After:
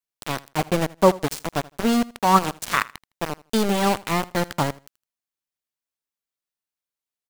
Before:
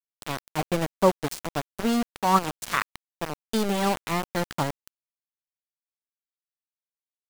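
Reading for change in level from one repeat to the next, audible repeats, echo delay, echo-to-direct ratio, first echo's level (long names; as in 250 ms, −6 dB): −14.0 dB, 2, 80 ms, −21.0 dB, −21.0 dB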